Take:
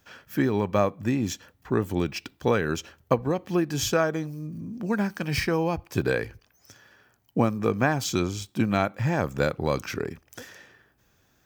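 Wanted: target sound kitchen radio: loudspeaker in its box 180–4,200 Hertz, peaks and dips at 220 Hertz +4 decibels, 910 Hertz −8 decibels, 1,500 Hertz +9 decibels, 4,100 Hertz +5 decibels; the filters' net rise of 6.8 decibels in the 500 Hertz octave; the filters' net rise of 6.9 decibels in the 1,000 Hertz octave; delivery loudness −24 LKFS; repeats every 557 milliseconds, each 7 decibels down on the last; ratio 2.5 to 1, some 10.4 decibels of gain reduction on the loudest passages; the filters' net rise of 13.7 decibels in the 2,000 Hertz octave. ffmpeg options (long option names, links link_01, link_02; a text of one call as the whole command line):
ffmpeg -i in.wav -af "equalizer=frequency=500:width_type=o:gain=7,equalizer=frequency=1000:width_type=o:gain=4.5,equalizer=frequency=2000:width_type=o:gain=8.5,acompressor=threshold=-27dB:ratio=2.5,highpass=180,equalizer=frequency=220:width_type=q:width=4:gain=4,equalizer=frequency=910:width_type=q:width=4:gain=-8,equalizer=frequency=1500:width_type=q:width=4:gain=9,equalizer=frequency=4100:width_type=q:width=4:gain=5,lowpass=frequency=4200:width=0.5412,lowpass=frequency=4200:width=1.3066,aecho=1:1:557|1114|1671|2228|2785:0.447|0.201|0.0905|0.0407|0.0183,volume=4dB" out.wav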